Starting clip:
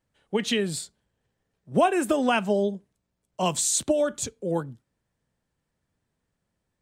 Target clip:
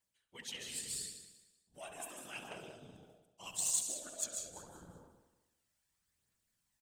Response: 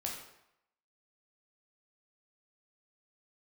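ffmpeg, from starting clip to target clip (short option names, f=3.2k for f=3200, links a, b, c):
-filter_complex "[0:a]asplit=2[a][b];[1:a]atrim=start_sample=2205,lowshelf=f=140:g=10.5,adelay=142[c];[b][c]afir=irnorm=-1:irlink=0,volume=-5dB[d];[a][d]amix=inputs=2:normalize=0,afftfilt=real='hypot(re,im)*cos(2*PI*random(0))':imag='hypot(re,im)*sin(2*PI*random(1))':win_size=512:overlap=0.75,areverse,acompressor=threshold=-45dB:ratio=4,areverse,asplit=2[e][f];[f]adelay=68,lowpass=f=2k:p=1,volume=-5.5dB,asplit=2[g][h];[h]adelay=68,lowpass=f=2k:p=1,volume=0.22,asplit=2[i][j];[j]adelay=68,lowpass=f=2k:p=1,volume=0.22[k];[e][g][i][k]amix=inputs=4:normalize=0,aphaser=in_gain=1:out_gain=1:delay=1.6:decay=0.33:speed=0.79:type=triangular,highshelf=f=4.7k:g=11.5,aecho=1:1:190|380|570:0.224|0.0694|0.0215,aeval=exprs='0.0473*(cos(1*acos(clip(val(0)/0.0473,-1,1)))-cos(1*PI/2))+0.00531*(cos(3*acos(clip(val(0)/0.0473,-1,1)))-cos(3*PI/2))':c=same,tiltshelf=f=920:g=-8,volume=-3dB"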